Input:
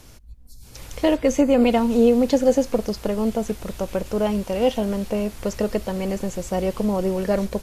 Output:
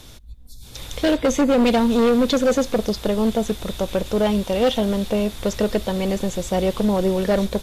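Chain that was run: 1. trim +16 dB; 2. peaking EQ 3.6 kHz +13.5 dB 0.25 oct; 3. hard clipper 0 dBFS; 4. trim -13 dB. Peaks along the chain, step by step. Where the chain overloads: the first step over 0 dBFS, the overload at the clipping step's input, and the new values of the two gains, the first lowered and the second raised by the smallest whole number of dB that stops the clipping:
+9.5 dBFS, +10.0 dBFS, 0.0 dBFS, -13.0 dBFS; step 1, 10.0 dB; step 1 +6 dB, step 4 -3 dB

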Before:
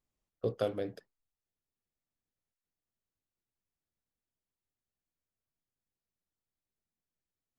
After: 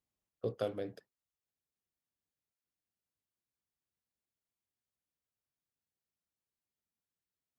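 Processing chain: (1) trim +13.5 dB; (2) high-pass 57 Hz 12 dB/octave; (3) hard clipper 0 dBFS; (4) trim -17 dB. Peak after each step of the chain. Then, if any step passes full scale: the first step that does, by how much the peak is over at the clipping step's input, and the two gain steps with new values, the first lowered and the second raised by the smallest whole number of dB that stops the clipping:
-5.5 dBFS, -4.5 dBFS, -4.5 dBFS, -21.5 dBFS; nothing clips

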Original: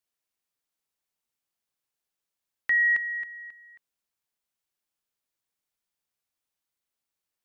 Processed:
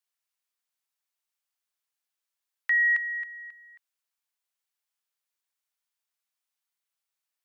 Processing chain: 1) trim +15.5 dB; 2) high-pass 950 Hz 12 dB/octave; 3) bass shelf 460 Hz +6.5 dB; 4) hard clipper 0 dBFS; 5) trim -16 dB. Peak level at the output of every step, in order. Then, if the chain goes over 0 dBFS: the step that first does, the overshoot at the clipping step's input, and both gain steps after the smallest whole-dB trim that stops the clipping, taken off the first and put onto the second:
-3.0 dBFS, -3.0 dBFS, -2.5 dBFS, -2.5 dBFS, -18.5 dBFS; nothing clips

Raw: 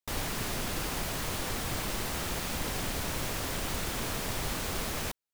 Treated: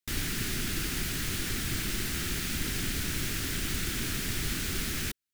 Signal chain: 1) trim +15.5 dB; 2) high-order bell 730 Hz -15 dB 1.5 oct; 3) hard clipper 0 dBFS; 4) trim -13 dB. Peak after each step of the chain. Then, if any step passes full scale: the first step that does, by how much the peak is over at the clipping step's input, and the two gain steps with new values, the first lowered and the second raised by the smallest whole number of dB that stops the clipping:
-3.5 dBFS, -5.0 dBFS, -5.0 dBFS, -18.0 dBFS; nothing clips

